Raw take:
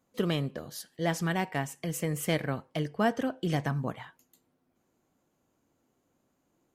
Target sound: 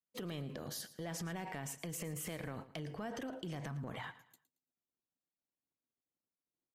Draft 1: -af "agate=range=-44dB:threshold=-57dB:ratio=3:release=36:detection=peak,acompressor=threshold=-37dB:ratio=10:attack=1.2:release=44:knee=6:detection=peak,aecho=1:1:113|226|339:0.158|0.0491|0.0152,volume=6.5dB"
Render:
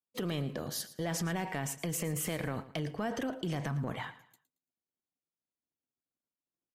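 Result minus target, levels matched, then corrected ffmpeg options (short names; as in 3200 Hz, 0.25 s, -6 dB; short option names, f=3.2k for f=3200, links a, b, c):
compressor: peak gain reduction -8 dB
-af "agate=range=-44dB:threshold=-57dB:ratio=3:release=36:detection=peak,acompressor=threshold=-46dB:ratio=10:attack=1.2:release=44:knee=6:detection=peak,aecho=1:1:113|226|339:0.158|0.0491|0.0152,volume=6.5dB"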